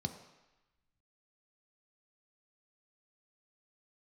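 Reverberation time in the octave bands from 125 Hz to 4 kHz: 0.85, 0.85, 0.95, 1.1, 1.2, 1.0 s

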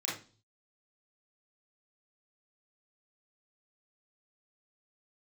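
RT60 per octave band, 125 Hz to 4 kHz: 0.80, 0.50, 0.40, 0.35, 0.30, 0.40 s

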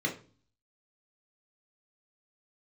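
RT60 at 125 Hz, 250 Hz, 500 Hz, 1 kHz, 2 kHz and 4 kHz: 0.70, 0.55, 0.40, 0.35, 0.35, 0.35 s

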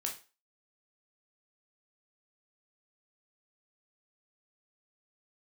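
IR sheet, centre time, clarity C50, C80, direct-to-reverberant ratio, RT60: 19 ms, 9.5 dB, 15.5 dB, 0.5 dB, 0.35 s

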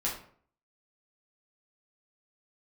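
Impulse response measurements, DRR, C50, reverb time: -5.5 dB, 5.5 dB, 0.55 s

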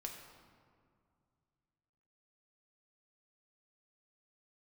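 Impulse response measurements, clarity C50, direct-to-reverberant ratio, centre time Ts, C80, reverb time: 4.5 dB, 1.0 dB, 49 ms, 6.0 dB, 2.2 s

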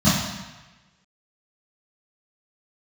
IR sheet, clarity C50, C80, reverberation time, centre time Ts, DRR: 0.5 dB, 4.0 dB, 1.1 s, 75 ms, -13.5 dB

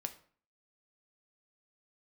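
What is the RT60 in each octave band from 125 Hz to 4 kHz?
0.55, 0.55, 0.45, 0.50, 0.45, 0.35 s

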